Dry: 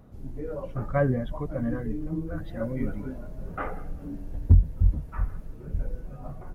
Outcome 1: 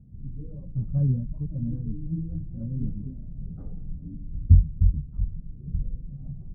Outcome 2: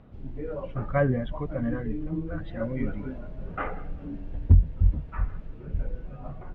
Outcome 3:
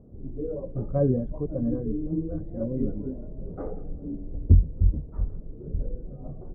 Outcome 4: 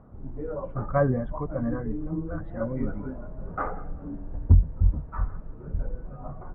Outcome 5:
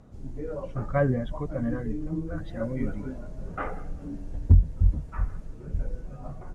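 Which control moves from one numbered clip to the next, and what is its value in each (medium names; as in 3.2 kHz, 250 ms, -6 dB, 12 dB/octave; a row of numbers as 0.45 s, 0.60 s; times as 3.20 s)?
resonant low-pass, frequency: 160 Hz, 3 kHz, 430 Hz, 1.2 kHz, 7.6 kHz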